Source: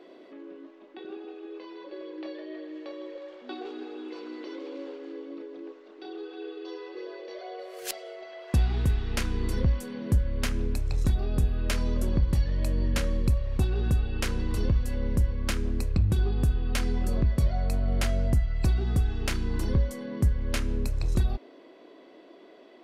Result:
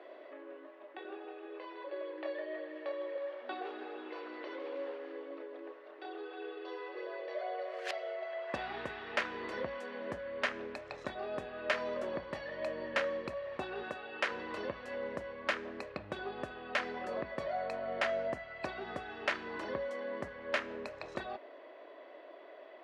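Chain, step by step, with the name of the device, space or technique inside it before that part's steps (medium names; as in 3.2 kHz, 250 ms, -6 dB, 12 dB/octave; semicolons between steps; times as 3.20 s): tin-can telephone (band-pass 650–2300 Hz; small resonant body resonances 600/1800 Hz, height 8 dB, ringing for 35 ms); 13.83–14.31 s: bass shelf 150 Hz -12 dB; trim +3 dB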